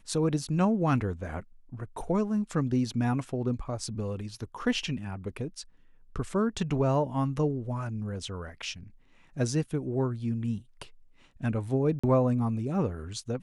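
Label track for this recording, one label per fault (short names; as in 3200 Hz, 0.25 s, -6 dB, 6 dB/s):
11.990000	12.040000	gap 45 ms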